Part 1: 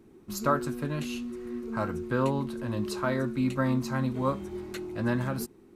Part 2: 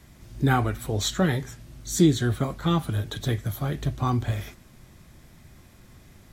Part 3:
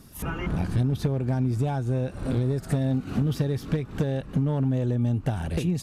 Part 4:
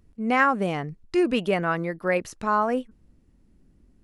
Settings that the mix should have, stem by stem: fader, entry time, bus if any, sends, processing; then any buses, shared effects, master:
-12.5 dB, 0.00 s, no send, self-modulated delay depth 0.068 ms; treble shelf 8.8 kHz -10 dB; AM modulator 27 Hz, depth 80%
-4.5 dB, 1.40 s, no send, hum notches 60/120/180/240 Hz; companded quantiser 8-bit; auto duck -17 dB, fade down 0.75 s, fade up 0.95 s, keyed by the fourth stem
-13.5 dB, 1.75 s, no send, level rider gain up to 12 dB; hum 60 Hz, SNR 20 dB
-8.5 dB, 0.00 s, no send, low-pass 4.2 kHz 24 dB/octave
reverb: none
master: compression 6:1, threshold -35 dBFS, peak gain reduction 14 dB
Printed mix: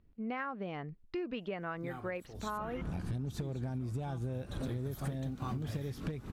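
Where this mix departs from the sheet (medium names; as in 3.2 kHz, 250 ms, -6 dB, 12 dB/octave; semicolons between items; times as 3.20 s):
stem 1: muted; stem 3: entry 1.75 s -> 2.35 s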